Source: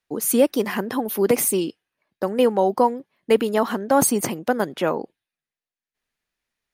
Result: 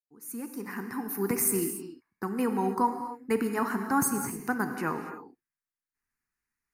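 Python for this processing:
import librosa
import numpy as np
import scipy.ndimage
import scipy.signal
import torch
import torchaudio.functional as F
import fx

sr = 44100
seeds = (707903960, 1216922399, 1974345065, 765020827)

y = fx.fade_in_head(x, sr, length_s=1.57)
y = fx.level_steps(y, sr, step_db=11, at=(4.0, 4.47))
y = fx.fixed_phaser(y, sr, hz=1400.0, stages=4)
y = fx.rev_gated(y, sr, seeds[0], gate_ms=310, shape='flat', drr_db=6.0)
y = F.gain(torch.from_numpy(y), -3.0).numpy()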